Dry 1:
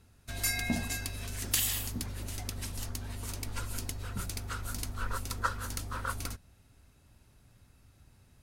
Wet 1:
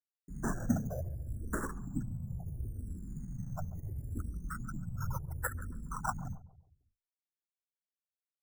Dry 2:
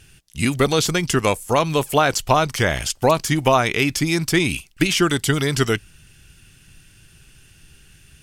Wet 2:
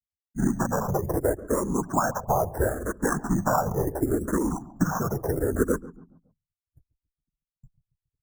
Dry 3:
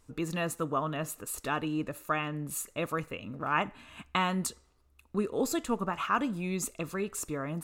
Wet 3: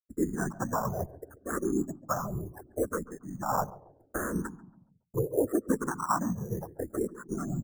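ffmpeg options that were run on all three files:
-filter_complex "[0:a]afftfilt=real='re*gte(hypot(re,im),0.0501)':imag='im*gte(hypot(re,im),0.0501)':win_size=1024:overlap=0.75,bandreject=frequency=60:width_type=h:width=6,bandreject=frequency=120:width_type=h:width=6,bandreject=frequency=180:width_type=h:width=6,agate=range=-35dB:threshold=-49dB:ratio=16:detection=peak,equalizer=frequency=290:width=0.39:gain=3.5,acompressor=threshold=-24dB:ratio=2.5,afftfilt=real='hypot(re,im)*cos(2*PI*random(0))':imag='hypot(re,im)*sin(2*PI*random(1))':win_size=512:overlap=0.75,acrusher=samples=16:mix=1:aa=0.000001:lfo=1:lforange=9.6:lforate=0.35,asuperstop=centerf=3200:order=12:qfactor=0.74,asplit=2[link_01][link_02];[link_02]adelay=139,lowpass=frequency=840:poles=1,volume=-16dB,asplit=2[link_03][link_04];[link_04]adelay=139,lowpass=frequency=840:poles=1,volume=0.47,asplit=2[link_05][link_06];[link_06]adelay=139,lowpass=frequency=840:poles=1,volume=0.47,asplit=2[link_07][link_08];[link_08]adelay=139,lowpass=frequency=840:poles=1,volume=0.47[link_09];[link_03][link_05][link_07][link_09]amix=inputs=4:normalize=0[link_10];[link_01][link_10]amix=inputs=2:normalize=0,asplit=2[link_11][link_12];[link_12]afreqshift=-0.72[link_13];[link_11][link_13]amix=inputs=2:normalize=1,volume=8.5dB"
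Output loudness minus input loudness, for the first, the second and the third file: −4.5, −7.5, 0.0 LU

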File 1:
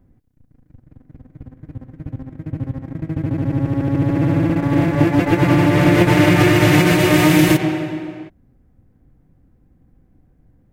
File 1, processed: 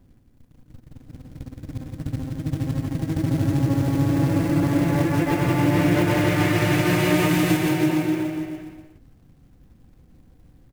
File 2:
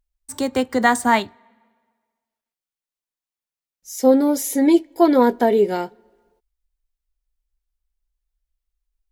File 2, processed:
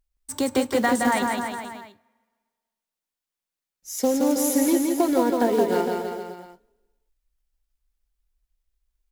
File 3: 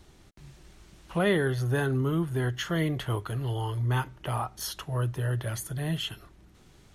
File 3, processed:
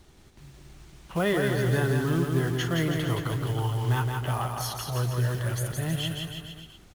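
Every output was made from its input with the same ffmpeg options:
-af "acompressor=threshold=-19dB:ratio=6,acrusher=bits=5:mode=log:mix=0:aa=0.000001,aecho=1:1:170|323|460.7|584.6|696.2:0.631|0.398|0.251|0.158|0.1"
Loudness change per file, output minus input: −6.0, −4.5, +2.0 LU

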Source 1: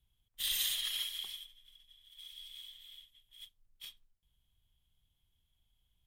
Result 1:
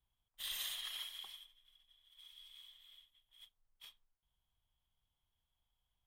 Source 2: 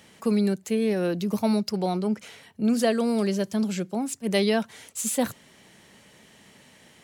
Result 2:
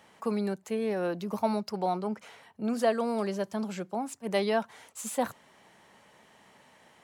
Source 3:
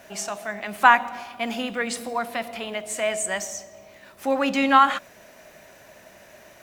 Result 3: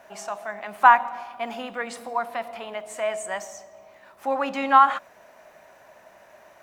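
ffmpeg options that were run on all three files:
-af "equalizer=frequency=930:width=0.74:gain=12.5,volume=-10dB"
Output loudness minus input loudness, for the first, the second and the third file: −8.5, −5.5, −0.5 LU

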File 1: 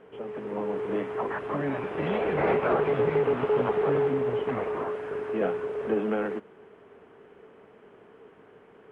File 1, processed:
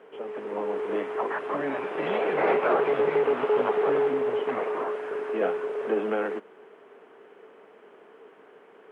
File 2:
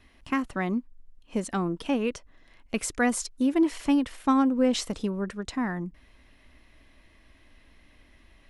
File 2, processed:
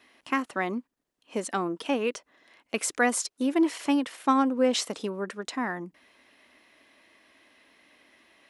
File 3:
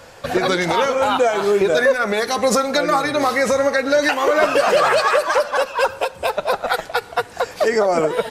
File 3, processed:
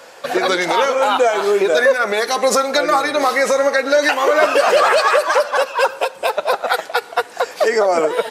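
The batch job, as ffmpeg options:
-af "highpass=330,volume=2.5dB"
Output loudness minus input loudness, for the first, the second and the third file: +1.0, −0.5, +2.0 LU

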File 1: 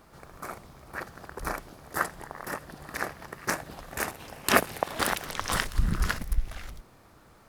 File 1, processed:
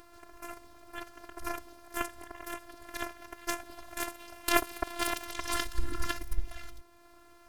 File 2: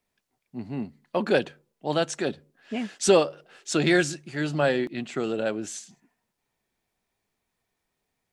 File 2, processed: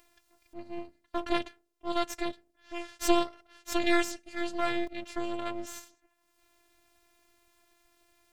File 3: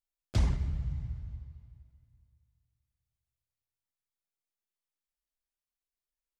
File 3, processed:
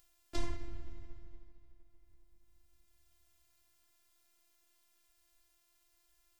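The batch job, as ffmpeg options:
-af "afftfilt=real='hypot(re,im)*cos(PI*b)':imag='0':win_size=512:overlap=0.75,aeval=exprs='max(val(0),0)':channel_layout=same,acompressor=mode=upward:threshold=-48dB:ratio=2.5"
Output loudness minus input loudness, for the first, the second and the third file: −5.0, −6.5, −12.5 LU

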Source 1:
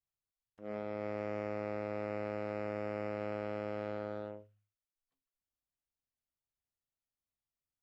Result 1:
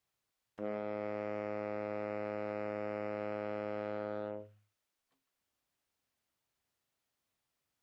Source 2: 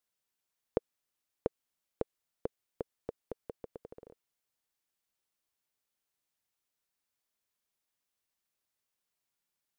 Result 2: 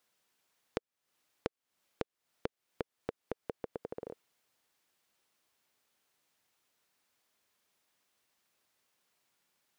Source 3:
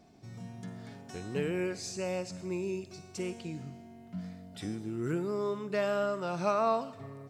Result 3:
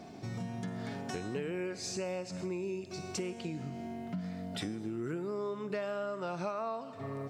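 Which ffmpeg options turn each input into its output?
-af "highpass=frequency=150:poles=1,highshelf=frequency=5700:gain=-7,acompressor=threshold=-48dB:ratio=6,volume=12.5dB"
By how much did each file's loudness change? 0.0, −1.5, −3.5 LU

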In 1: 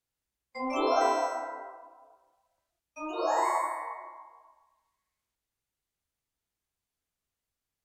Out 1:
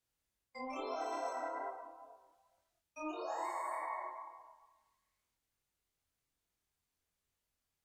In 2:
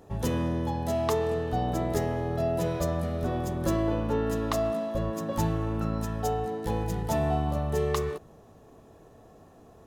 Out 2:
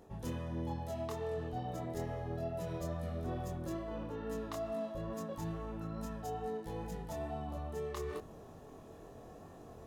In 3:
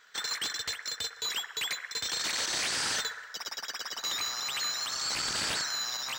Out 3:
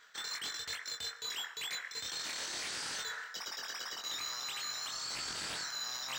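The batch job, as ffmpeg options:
-af "areverse,acompressor=threshold=-38dB:ratio=8,areverse,flanger=delay=22.5:depth=2.1:speed=2.3,volume=3.5dB"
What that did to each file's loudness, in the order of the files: −12.0, −11.5, −7.0 LU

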